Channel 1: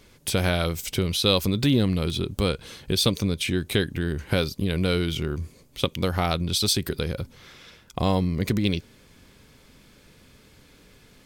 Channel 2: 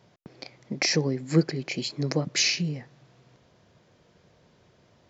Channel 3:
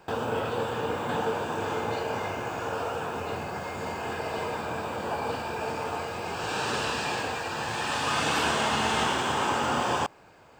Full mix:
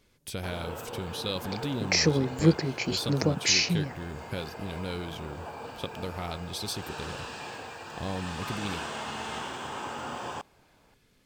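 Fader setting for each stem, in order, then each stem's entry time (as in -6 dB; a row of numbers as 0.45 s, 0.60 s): -12.0 dB, +0.5 dB, -10.0 dB; 0.00 s, 1.10 s, 0.35 s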